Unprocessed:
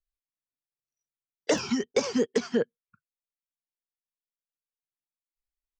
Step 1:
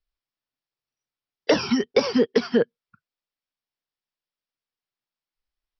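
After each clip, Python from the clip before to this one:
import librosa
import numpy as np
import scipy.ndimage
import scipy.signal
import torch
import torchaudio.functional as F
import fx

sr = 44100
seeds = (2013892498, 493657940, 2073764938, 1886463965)

y = scipy.signal.sosfilt(scipy.signal.cheby1(8, 1.0, 5600.0, 'lowpass', fs=sr, output='sos'), x)
y = y * 10.0 ** (6.5 / 20.0)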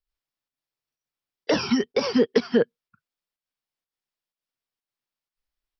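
y = fx.volume_shaper(x, sr, bpm=125, per_beat=1, depth_db=-6, release_ms=93.0, shape='slow start')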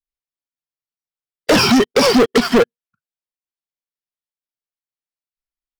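y = fx.leveller(x, sr, passes=5)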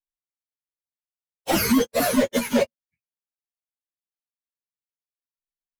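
y = fx.partial_stretch(x, sr, pct=128)
y = y * 10.0 ** (-4.0 / 20.0)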